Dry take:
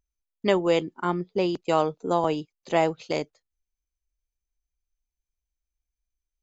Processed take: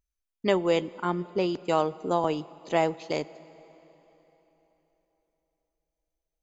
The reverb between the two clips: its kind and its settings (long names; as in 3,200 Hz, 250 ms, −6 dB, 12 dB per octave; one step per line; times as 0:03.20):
dense smooth reverb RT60 3.9 s, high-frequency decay 0.85×, DRR 18.5 dB
level −2 dB